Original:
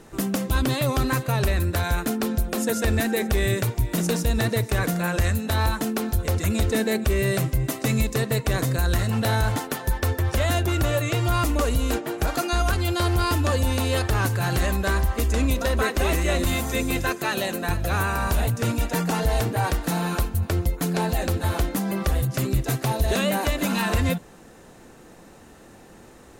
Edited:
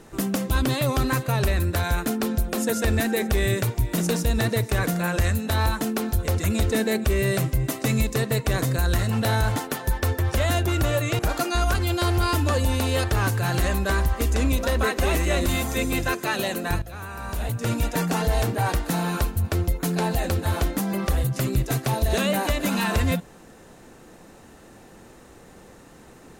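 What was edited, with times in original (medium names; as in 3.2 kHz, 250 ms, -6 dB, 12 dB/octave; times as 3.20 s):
11.19–12.17 s: delete
17.80–18.73 s: fade in quadratic, from -14 dB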